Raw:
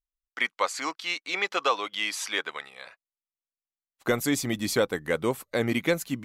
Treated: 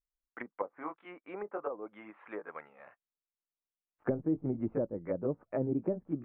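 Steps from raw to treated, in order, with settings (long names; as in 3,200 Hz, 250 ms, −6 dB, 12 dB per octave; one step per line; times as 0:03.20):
pitch glide at a constant tempo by +2.5 semitones starting unshifted
treble cut that deepens with the level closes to 420 Hz, closed at −24 dBFS
Gaussian smoothing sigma 5.5 samples
level −2 dB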